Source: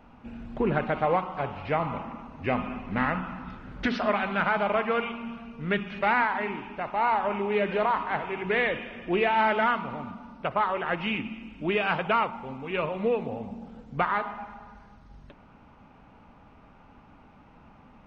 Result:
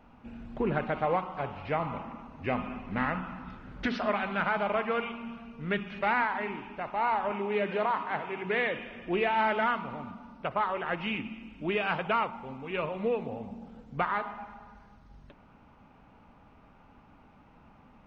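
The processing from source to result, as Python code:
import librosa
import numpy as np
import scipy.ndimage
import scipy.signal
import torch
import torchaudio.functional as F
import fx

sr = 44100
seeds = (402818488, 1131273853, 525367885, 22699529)

y = fx.highpass(x, sr, hz=110.0, slope=12, at=(7.31, 8.78))
y = y * librosa.db_to_amplitude(-3.5)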